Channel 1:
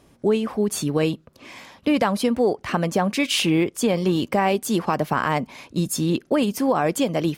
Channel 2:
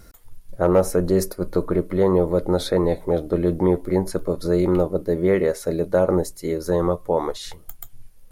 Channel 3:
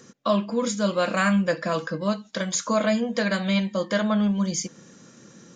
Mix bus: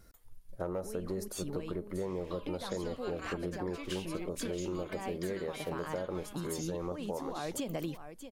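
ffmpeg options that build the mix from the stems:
-filter_complex "[0:a]acompressor=threshold=-30dB:ratio=3,adelay=600,volume=2dB,asplit=2[a][b];[b]volume=-20dB[c];[1:a]volume=-12dB,asplit=2[d][e];[2:a]highpass=830,acompressor=threshold=-30dB:ratio=2.5,adelay=2050,volume=-12dB[f];[e]apad=whole_len=351732[g];[a][g]sidechaincompress=threshold=-40dB:ratio=8:attack=45:release=682[h];[c]aecho=0:1:630:1[i];[h][d][f][i]amix=inputs=4:normalize=0,acompressor=threshold=-33dB:ratio=6"

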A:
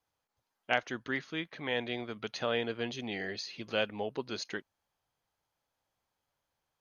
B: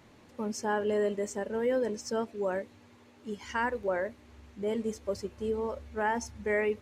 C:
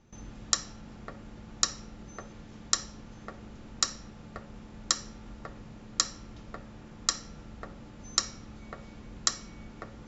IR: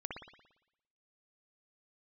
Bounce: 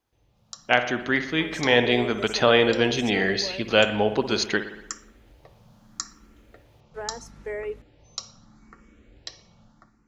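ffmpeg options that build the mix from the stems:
-filter_complex "[0:a]volume=0.5dB,asplit=2[a][b];[b]volume=-4.5dB[c];[1:a]highpass=f=350:w=0.5412,highpass=f=350:w=1.3066,acrossover=split=470[d][e];[e]acompressor=threshold=-39dB:ratio=3[f];[d][f]amix=inputs=2:normalize=0,aeval=exprs='val(0)+0.00355*(sin(2*PI*50*n/s)+sin(2*PI*2*50*n/s)/2+sin(2*PI*3*50*n/s)/3+sin(2*PI*4*50*n/s)/4+sin(2*PI*5*50*n/s)/5)':c=same,adelay=1000,volume=-11.5dB,asplit=3[g][h][i];[g]atrim=end=4.46,asetpts=PTS-STARTPTS,afade=t=out:st=4.456:d=0.004:c=hsin[j];[h]atrim=start=4.46:end=6.94,asetpts=PTS-STARTPTS,volume=0[k];[i]atrim=start=6.94,asetpts=PTS-STARTPTS,afade=t=in:d=0.004:c=hsin[l];[j][k][l]concat=n=3:v=0:a=1[m];[2:a]asplit=2[n][o];[o]afreqshift=0.77[p];[n][p]amix=inputs=2:normalize=1,volume=-18dB,asplit=2[q][r];[r]volume=-12.5dB[s];[3:a]atrim=start_sample=2205[t];[c][s]amix=inputs=2:normalize=0[u];[u][t]afir=irnorm=-1:irlink=0[v];[a][m][q][v]amix=inputs=4:normalize=0,dynaudnorm=f=230:g=5:m=12dB"

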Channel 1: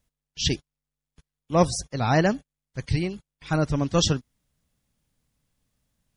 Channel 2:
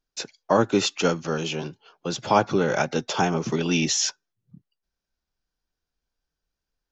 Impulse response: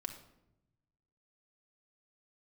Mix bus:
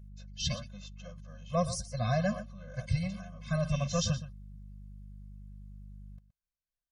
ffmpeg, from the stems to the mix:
-filter_complex "[0:a]alimiter=limit=-13dB:level=0:latency=1:release=61,aeval=exprs='val(0)+0.00708*(sin(2*PI*50*n/s)+sin(2*PI*2*50*n/s)/2+sin(2*PI*3*50*n/s)/3+sin(2*PI*4*50*n/s)/4+sin(2*PI*5*50*n/s)/5)':c=same,volume=-4.5dB,asplit=2[a][b];[b]volume=-14dB[c];[1:a]volume=-14dB,afade=t=in:st=3.38:d=0.45:silence=0.334965[d];[c]aecho=0:1:120:1[e];[a][d][e]amix=inputs=3:normalize=0,afftfilt=real='re*eq(mod(floor(b*sr/1024/250),2),0)':imag='im*eq(mod(floor(b*sr/1024/250),2),0)':win_size=1024:overlap=0.75"

